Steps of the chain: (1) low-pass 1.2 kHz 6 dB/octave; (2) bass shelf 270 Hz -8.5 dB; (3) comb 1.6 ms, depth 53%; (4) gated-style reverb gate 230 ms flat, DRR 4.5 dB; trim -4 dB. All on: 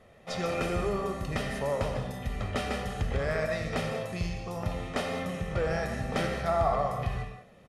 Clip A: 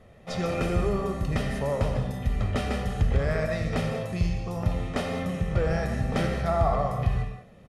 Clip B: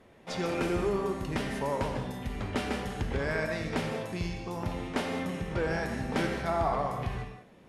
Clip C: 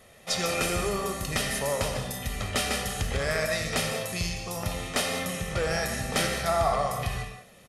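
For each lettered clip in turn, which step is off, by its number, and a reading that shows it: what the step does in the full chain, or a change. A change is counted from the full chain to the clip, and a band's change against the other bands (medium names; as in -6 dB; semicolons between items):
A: 2, 125 Hz band +6.5 dB; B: 3, 250 Hz band +3.5 dB; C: 1, 8 kHz band +14.0 dB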